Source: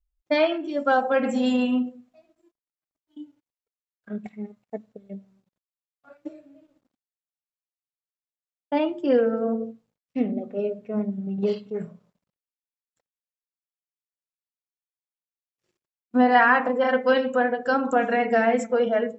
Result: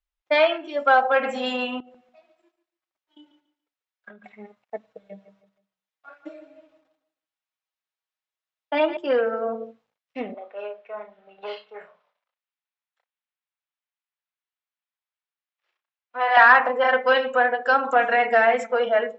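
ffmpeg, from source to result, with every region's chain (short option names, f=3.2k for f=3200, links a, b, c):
-filter_complex "[0:a]asettb=1/sr,asplit=3[a][b][c];[a]atrim=end=1.804[d];[b]atrim=start=1.8:end=4.32,asetpts=PTS-STARTPTS,afade=t=in:d=0.004:c=qsin,afade=t=out:st=2.516:d=0.004:c=qsin,aecho=1:1:5.4:0.38,atrim=end_sample=111132,acompressor=threshold=-37dB:ratio=10:attack=3.2:release=140:knee=1:detection=peak,aecho=1:1:143|286|429:0.251|0.0578|0.0133,atrim=end_sample=111132[e];[c]atrim=start=4.316[f];[d][e]acrossfade=d=0.004:c1=hsin:c2=qsin[g];[g][f]acrossfade=d=0.004:c1=qsin:c2=hsin,asettb=1/sr,asplit=3[h][i][j];[h]atrim=end=4.834[k];[i]atrim=start=4.83:end=8.97,asetpts=PTS-STARTPTS,afade=t=in:d=0.004:c=qsin,afade=t=out:st=4.136:d=0.004:c=qsin,aecho=1:1:6.3:0.72,atrim=end_sample=182574,aecho=1:1:157|314|471:0.251|0.0804|0.0257,atrim=end_sample=182574[l];[j]atrim=start=8.966[m];[k][l]acrossfade=d=0.004:c1=hsin:c2=qsin[n];[n][m]acrossfade=d=0.004:c1=qsin:c2=hsin,asettb=1/sr,asplit=3[o][p][q];[o]atrim=end=10.344[r];[p]atrim=start=10.34:end=16.37,asetpts=PTS-STARTPTS,afade=t=in:d=0.004:c=qsin,afade=t=out:st=6.026:d=0.004:c=qsin,aeval=exprs='(tanh(5.62*val(0)+0.15)-tanh(0.15))/5.62':c=same,acrossover=split=520 4700:gain=0.0631 1 0.158[s][t][u];[s][t][u]amix=inputs=3:normalize=0,asplit=2[v][w];[w]adelay=34,volume=-7.5dB[x];[v][x]amix=inputs=2:normalize=0,atrim=end_sample=265923[y];[q]atrim=start=16.366[z];[r][y]acrossfade=d=0.004:c1=hsin:c2=qsin[aa];[aa][z]acrossfade=d=0.004:c1=qsin:c2=hsin,acontrast=75,acrossover=split=560 4700:gain=0.112 1 0.158[ab][ac][ad];[ab][ac][ad]amix=inputs=3:normalize=0,bandreject=f=4.5k:w=21"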